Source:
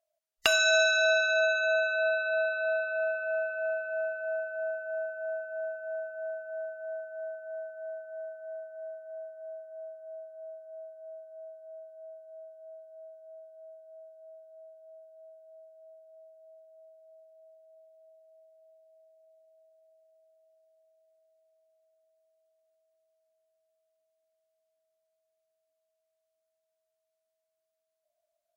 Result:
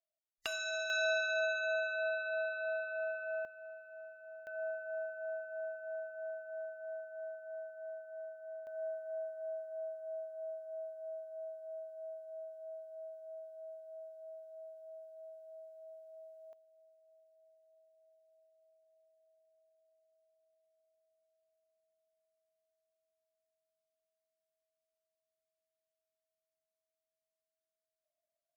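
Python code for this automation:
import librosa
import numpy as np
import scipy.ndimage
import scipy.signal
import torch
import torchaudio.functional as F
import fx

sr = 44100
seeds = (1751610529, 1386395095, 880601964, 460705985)

y = fx.gain(x, sr, db=fx.steps((0.0, -15.0), (0.9, -8.0), (3.45, -18.0), (4.47, -6.0), (8.67, 1.0), (16.53, -10.5)))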